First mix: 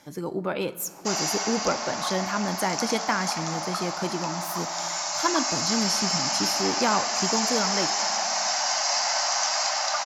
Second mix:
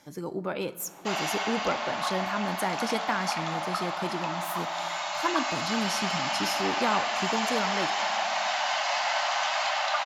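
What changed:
speech -3.5 dB; background: add resonant high shelf 4300 Hz -8.5 dB, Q 3

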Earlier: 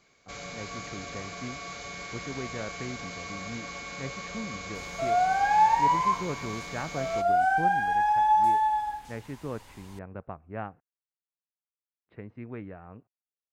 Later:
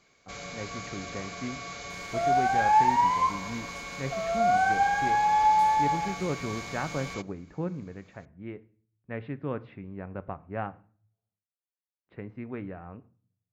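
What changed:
speech: send on; second sound: entry -2.85 s

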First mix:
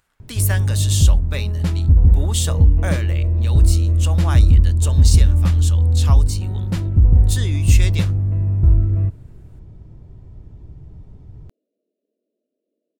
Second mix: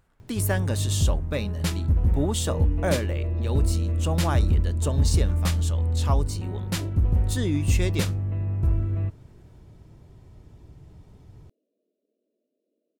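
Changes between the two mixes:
speech: add tilt shelf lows +7.5 dB, about 930 Hz; first sound: add tilt +2.5 dB/oct

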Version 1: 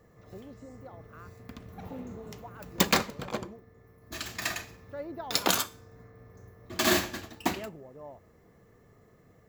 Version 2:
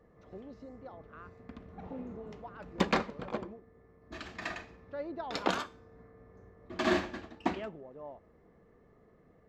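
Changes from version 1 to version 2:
background: add tape spacing loss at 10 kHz 28 dB; master: add bell 110 Hz -9.5 dB 0.78 oct

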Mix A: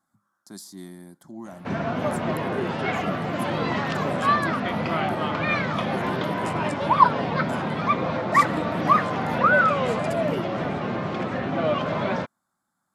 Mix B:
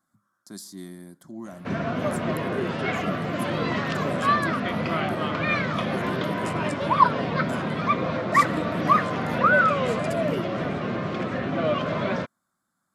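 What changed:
speech: send +7.5 dB; master: add bell 840 Hz -8.5 dB 0.28 oct

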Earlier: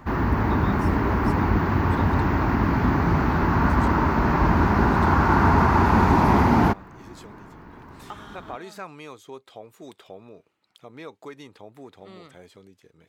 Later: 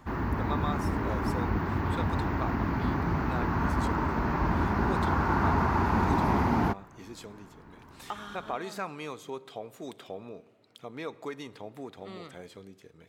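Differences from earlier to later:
background -8.0 dB; reverb: on, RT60 1.9 s

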